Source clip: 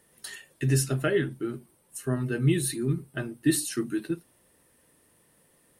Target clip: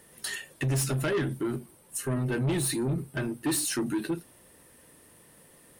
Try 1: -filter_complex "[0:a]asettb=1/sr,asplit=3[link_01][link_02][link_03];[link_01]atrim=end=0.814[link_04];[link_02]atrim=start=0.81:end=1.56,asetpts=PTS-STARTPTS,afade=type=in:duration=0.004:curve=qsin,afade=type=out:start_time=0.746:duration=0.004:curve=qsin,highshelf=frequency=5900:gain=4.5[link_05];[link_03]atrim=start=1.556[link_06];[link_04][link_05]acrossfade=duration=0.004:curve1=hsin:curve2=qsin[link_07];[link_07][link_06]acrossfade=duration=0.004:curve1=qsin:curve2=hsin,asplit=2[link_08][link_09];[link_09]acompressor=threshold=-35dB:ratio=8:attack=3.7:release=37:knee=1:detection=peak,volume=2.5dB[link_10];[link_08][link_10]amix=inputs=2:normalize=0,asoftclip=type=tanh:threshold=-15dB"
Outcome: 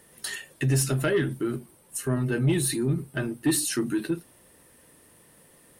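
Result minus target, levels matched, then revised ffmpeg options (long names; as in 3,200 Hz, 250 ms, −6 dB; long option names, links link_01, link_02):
soft clipping: distortion −9 dB
-filter_complex "[0:a]asettb=1/sr,asplit=3[link_01][link_02][link_03];[link_01]atrim=end=0.814[link_04];[link_02]atrim=start=0.81:end=1.56,asetpts=PTS-STARTPTS,afade=type=in:duration=0.004:curve=qsin,afade=type=out:start_time=0.746:duration=0.004:curve=qsin,highshelf=frequency=5900:gain=4.5[link_05];[link_03]atrim=start=1.556[link_06];[link_04][link_05]acrossfade=duration=0.004:curve1=hsin:curve2=qsin[link_07];[link_07][link_06]acrossfade=duration=0.004:curve1=qsin:curve2=hsin,asplit=2[link_08][link_09];[link_09]acompressor=threshold=-35dB:ratio=8:attack=3.7:release=37:knee=1:detection=peak,volume=2.5dB[link_10];[link_08][link_10]amix=inputs=2:normalize=0,asoftclip=type=tanh:threshold=-23.5dB"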